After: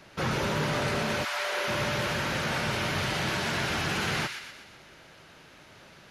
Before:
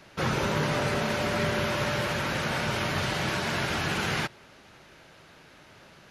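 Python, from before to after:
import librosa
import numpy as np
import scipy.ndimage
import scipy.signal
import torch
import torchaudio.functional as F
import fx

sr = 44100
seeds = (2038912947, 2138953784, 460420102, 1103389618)

y = fx.highpass(x, sr, hz=fx.line((1.23, 950.0), (1.67, 360.0)), slope=24, at=(1.23, 1.67), fade=0.02)
y = 10.0 ** (-20.5 / 20.0) * np.tanh(y / 10.0 ** (-20.5 / 20.0))
y = fx.echo_wet_highpass(y, sr, ms=122, feedback_pct=51, hz=1700.0, wet_db=-5.0)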